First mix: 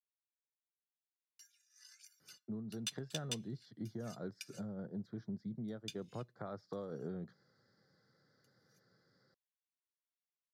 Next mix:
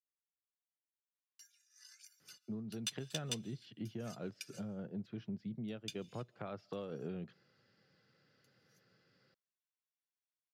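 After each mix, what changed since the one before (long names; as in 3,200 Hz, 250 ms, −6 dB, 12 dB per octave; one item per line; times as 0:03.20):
speech: remove Butterworth band-reject 2,700 Hz, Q 1.4
reverb: on, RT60 0.60 s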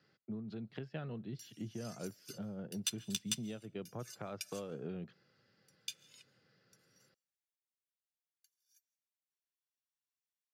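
speech: entry −2.20 s
background: add high-shelf EQ 6,100 Hz +9.5 dB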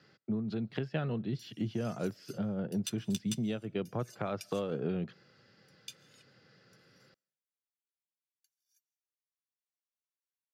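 speech +9.0 dB
background −3.5 dB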